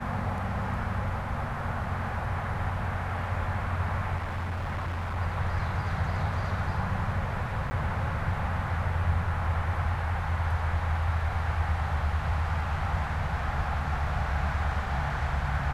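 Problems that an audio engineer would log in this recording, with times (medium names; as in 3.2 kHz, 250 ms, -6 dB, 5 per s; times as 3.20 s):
4.16–5.18 s: clipped -28.5 dBFS
7.70–7.71 s: dropout 10 ms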